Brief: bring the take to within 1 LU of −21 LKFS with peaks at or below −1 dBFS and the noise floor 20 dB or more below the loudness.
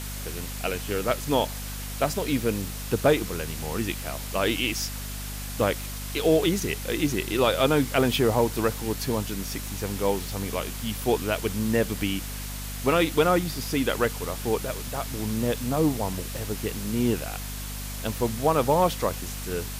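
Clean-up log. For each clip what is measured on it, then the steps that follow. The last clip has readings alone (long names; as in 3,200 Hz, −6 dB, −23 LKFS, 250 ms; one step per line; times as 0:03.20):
mains hum 50 Hz; hum harmonics up to 250 Hz; level of the hum −33 dBFS; background noise floor −34 dBFS; target noise floor −47 dBFS; integrated loudness −26.5 LKFS; sample peak −9.5 dBFS; target loudness −21.0 LKFS
→ hum removal 50 Hz, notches 5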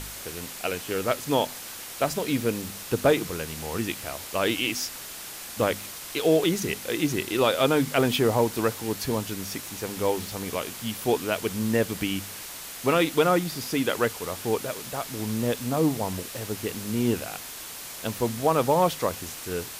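mains hum none found; background noise floor −39 dBFS; target noise floor −47 dBFS
→ broadband denoise 8 dB, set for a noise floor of −39 dBFS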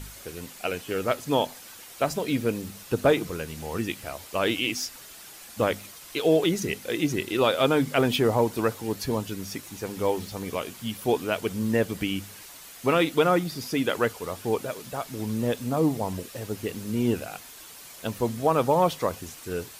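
background noise floor −46 dBFS; target noise floor −47 dBFS
→ broadband denoise 6 dB, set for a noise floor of −46 dBFS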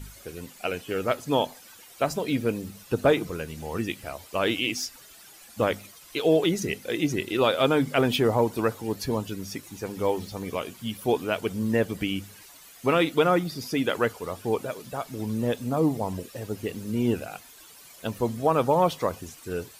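background noise floor −50 dBFS; integrated loudness −27.0 LKFS; sample peak −10.0 dBFS; target loudness −21.0 LKFS
→ level +6 dB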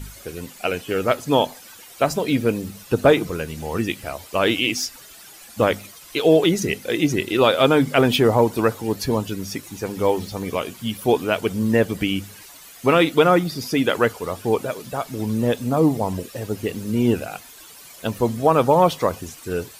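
integrated loudness −21.0 LKFS; sample peak −4.0 dBFS; background noise floor −44 dBFS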